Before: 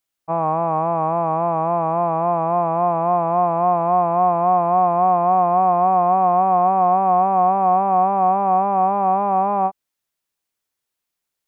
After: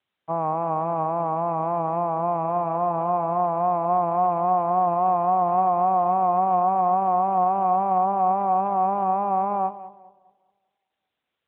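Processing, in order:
0:02.44–0:03.40: hum removal 97.57 Hz, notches 14
tape delay 202 ms, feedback 42%, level −13 dB, low-pass 1,400 Hz
level −4 dB
AMR narrowband 12.2 kbit/s 8,000 Hz

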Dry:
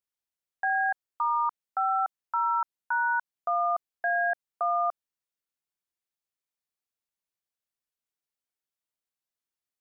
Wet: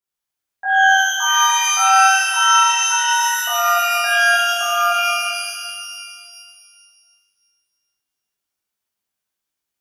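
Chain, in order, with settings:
reverb with rising layers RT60 2 s, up +12 semitones, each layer −2 dB, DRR −10.5 dB
level −2.5 dB

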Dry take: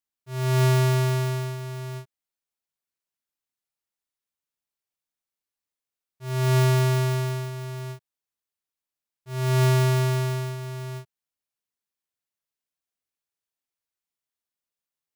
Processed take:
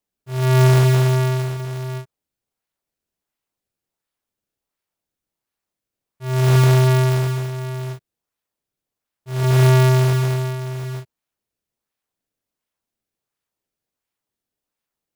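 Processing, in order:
in parallel at −4.5 dB: sample-and-hold swept by an LFO 24×, swing 160% 1.4 Hz
on the sum: level +3 dB

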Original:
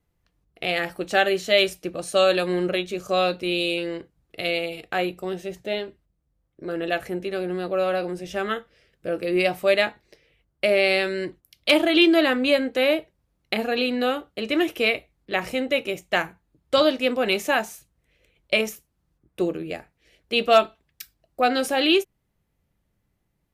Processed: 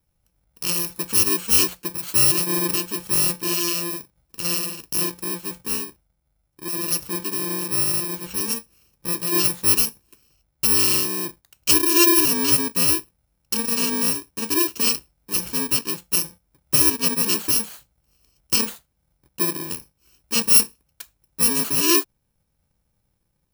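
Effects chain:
samples in bit-reversed order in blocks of 64 samples
level +1.5 dB

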